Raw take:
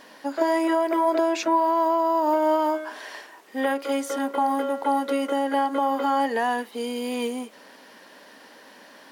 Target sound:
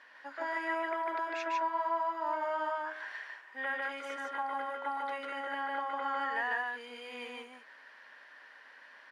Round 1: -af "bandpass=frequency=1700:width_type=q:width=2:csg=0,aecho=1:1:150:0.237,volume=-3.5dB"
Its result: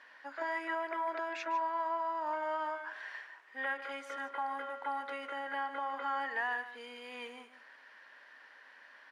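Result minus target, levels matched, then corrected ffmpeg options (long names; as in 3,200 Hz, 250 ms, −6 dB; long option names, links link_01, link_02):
echo-to-direct −11 dB
-af "bandpass=frequency=1700:width_type=q:width=2:csg=0,aecho=1:1:150:0.841,volume=-3.5dB"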